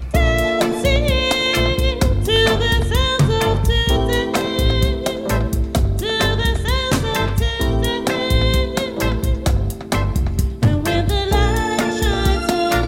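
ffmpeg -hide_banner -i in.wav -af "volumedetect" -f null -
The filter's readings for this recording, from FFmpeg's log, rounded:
mean_volume: -17.0 dB
max_volume: -4.6 dB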